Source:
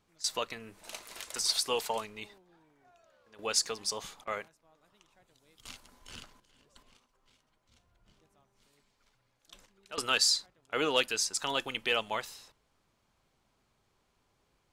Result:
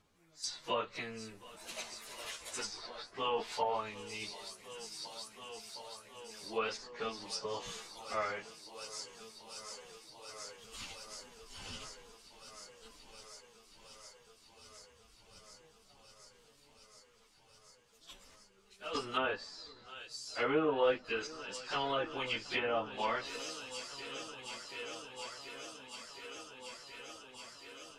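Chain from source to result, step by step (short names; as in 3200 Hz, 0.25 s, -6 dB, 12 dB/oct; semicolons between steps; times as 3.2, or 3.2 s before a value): multi-head echo 0.382 s, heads all three, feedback 71%, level -20.5 dB; plain phase-vocoder stretch 1.9×; treble ducked by the level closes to 1300 Hz, closed at -29 dBFS; gain +2 dB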